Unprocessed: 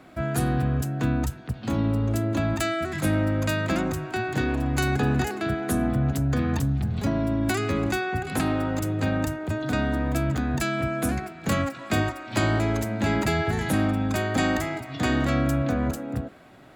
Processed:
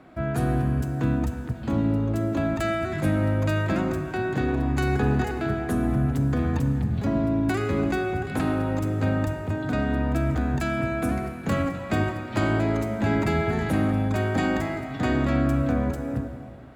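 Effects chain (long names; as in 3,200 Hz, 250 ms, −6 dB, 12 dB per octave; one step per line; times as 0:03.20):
high-shelf EQ 2,900 Hz −10.5 dB
on a send: convolution reverb RT60 2.1 s, pre-delay 32 ms, DRR 7 dB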